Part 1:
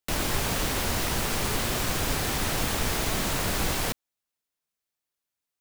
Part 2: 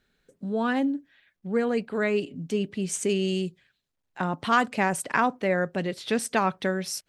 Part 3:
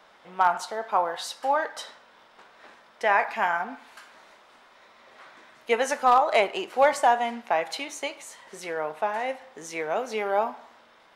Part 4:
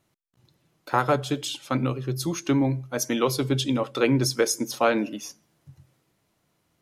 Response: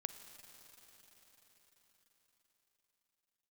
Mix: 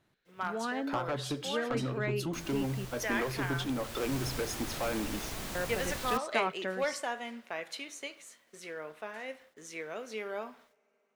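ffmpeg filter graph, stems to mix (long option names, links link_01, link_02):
-filter_complex "[0:a]adelay=2250,volume=-12dB,afade=type=in:start_time=3.74:duration=0.4:silence=0.421697[link_01];[1:a]lowpass=5200,lowshelf=frequency=220:gain=-11.5,volume=-7dB,asplit=3[link_02][link_03][link_04];[link_02]atrim=end=2.85,asetpts=PTS-STARTPTS,afade=type=out:start_time=2.846:duration=0.004:curve=hsin[link_05];[link_03]atrim=start=2.85:end=5.55,asetpts=PTS-STARTPTS,volume=0[link_06];[link_04]atrim=start=5.55,asetpts=PTS-STARTPTS,afade=type=in:duration=0.004:curve=hsin[link_07];[link_05][link_06][link_07]concat=n=3:v=0:a=1[link_08];[2:a]agate=range=-33dB:threshold=-41dB:ratio=3:detection=peak,equalizer=frequency=820:width_type=o:width=0.72:gain=-14,acrusher=bits=10:mix=0:aa=0.000001,volume=-8dB,asplit=2[link_09][link_10];[link_10]volume=-18.5dB[link_11];[3:a]bass=frequency=250:gain=0,treble=frequency=4000:gain=-8,acompressor=threshold=-27dB:ratio=3,asoftclip=type=tanh:threshold=-26dB,volume=-2dB[link_12];[4:a]atrim=start_sample=2205[link_13];[link_11][link_13]afir=irnorm=-1:irlink=0[link_14];[link_01][link_08][link_09][link_12][link_14]amix=inputs=5:normalize=0"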